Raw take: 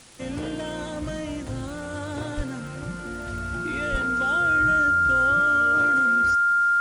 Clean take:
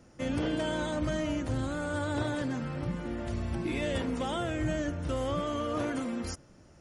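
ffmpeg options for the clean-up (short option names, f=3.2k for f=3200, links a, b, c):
-filter_complex "[0:a]adeclick=t=4,bandreject=f=1.4k:w=30,asplit=3[a][b][c];[a]afade=t=out:st=2.36:d=0.02[d];[b]highpass=f=140:w=0.5412,highpass=f=140:w=1.3066,afade=t=in:st=2.36:d=0.02,afade=t=out:st=2.48:d=0.02[e];[c]afade=t=in:st=2.48:d=0.02[f];[d][e][f]amix=inputs=3:normalize=0,asplit=3[g][h][i];[g]afade=t=out:st=3.91:d=0.02[j];[h]highpass=f=140:w=0.5412,highpass=f=140:w=1.3066,afade=t=in:st=3.91:d=0.02,afade=t=out:st=4.03:d=0.02[k];[i]afade=t=in:st=4.03:d=0.02[l];[j][k][l]amix=inputs=3:normalize=0,afwtdn=0.004"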